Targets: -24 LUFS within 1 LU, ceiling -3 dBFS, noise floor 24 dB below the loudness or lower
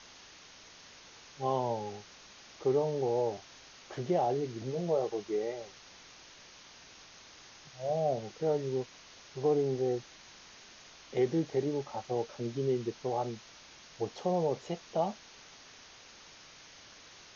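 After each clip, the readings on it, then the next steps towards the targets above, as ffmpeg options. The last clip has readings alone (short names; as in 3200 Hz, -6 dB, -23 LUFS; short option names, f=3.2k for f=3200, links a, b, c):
noise floor -55 dBFS; noise floor target -58 dBFS; loudness -33.5 LUFS; peak -18.5 dBFS; loudness target -24.0 LUFS
-> -af "afftdn=nr=6:nf=-55"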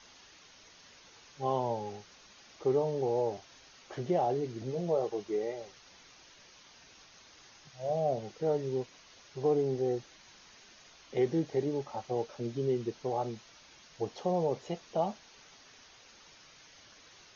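noise floor -58 dBFS; loudness -33.5 LUFS; peak -18.5 dBFS; loudness target -24.0 LUFS
-> -af "volume=9.5dB"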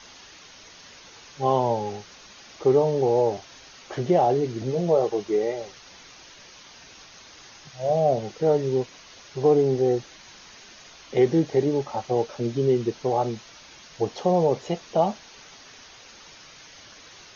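loudness -24.0 LUFS; peak -9.0 dBFS; noise floor -48 dBFS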